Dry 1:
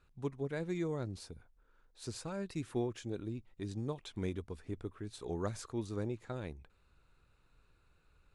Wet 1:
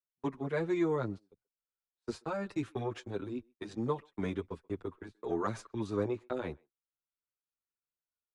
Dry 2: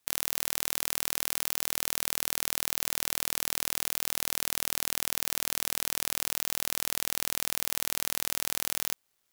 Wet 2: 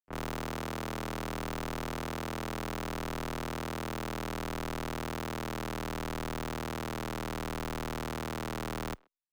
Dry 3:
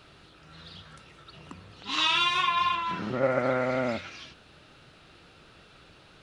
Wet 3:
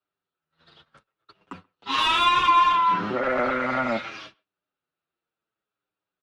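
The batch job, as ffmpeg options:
-filter_complex "[0:a]asplit=2[a][b];[b]highpass=f=720:p=1,volume=23dB,asoftclip=type=tanh:threshold=-1dB[c];[a][c]amix=inputs=2:normalize=0,lowpass=f=1.1k:p=1,volume=-6dB,agate=range=-41dB:threshold=-36dB:ratio=16:detection=peak,acrossover=split=230|640|1800[d][e][f][g];[e]asoftclip=type=tanh:threshold=-23dB[h];[f]bandpass=f=1.2k:t=q:w=0.95:csg=0[i];[d][h][i][g]amix=inputs=4:normalize=0,asplit=2[j][k];[k]adelay=130,highpass=300,lowpass=3.4k,asoftclip=type=hard:threshold=-15.5dB,volume=-29dB[l];[j][l]amix=inputs=2:normalize=0,asplit=2[m][n];[n]adelay=7.6,afreqshift=-0.66[o];[m][o]amix=inputs=2:normalize=1"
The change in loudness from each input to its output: +4.0, -8.5, +5.0 LU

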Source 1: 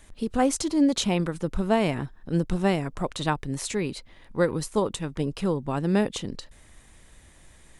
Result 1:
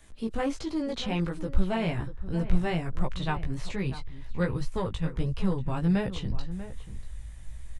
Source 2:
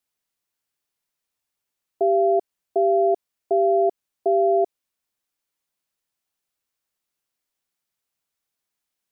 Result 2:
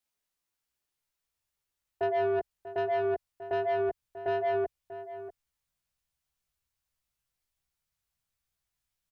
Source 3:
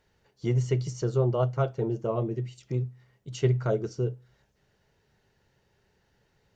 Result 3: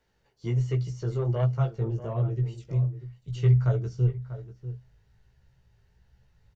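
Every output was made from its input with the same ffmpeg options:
-filter_complex "[0:a]flanger=delay=15.5:depth=2.5:speed=1.3,acrossover=split=4300[a][b];[b]acompressor=threshold=-56dB:ratio=4:attack=1:release=60[c];[a][c]amix=inputs=2:normalize=0,asubboost=boost=9.5:cutoff=98,acrossover=split=220|1200[d][e][f];[e]asoftclip=type=tanh:threshold=-26dB[g];[d][g][f]amix=inputs=3:normalize=0,asplit=2[h][i];[i]adelay=641.4,volume=-13dB,highshelf=f=4k:g=-14.4[j];[h][j]amix=inputs=2:normalize=0"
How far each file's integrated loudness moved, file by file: -4.5, -10.0, +1.5 LU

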